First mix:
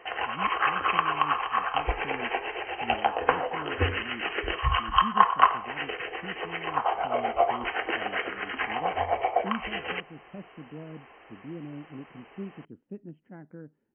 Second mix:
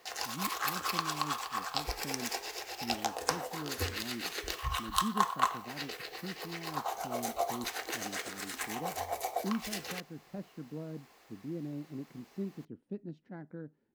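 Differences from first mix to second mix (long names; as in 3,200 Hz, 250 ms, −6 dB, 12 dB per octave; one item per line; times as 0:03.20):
background −10.0 dB
master: remove linear-phase brick-wall low-pass 3,200 Hz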